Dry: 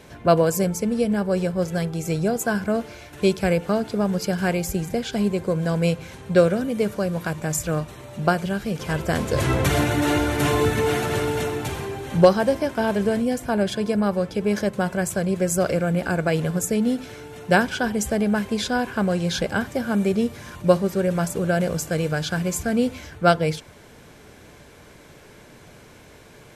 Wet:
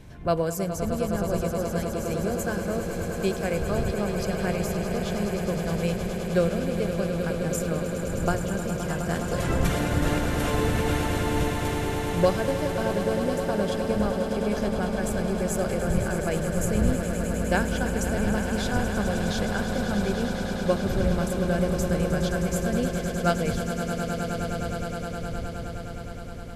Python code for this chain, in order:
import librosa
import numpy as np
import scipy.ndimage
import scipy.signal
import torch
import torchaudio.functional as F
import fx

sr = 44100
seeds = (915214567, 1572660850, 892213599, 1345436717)

y = fx.dmg_wind(x, sr, seeds[0], corner_hz=110.0, level_db=-28.0)
y = fx.echo_swell(y, sr, ms=104, loudest=8, wet_db=-11)
y = F.gain(torch.from_numpy(y), -7.5).numpy()